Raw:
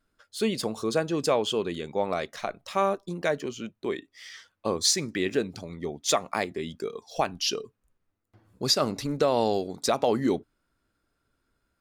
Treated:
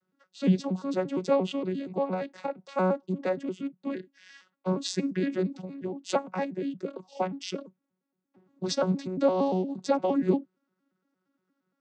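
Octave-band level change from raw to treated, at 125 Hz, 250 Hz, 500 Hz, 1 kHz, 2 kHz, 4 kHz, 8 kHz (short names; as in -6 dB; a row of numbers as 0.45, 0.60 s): +3.0, +2.5, -1.5, -3.5, -6.5, -11.0, -13.0 dB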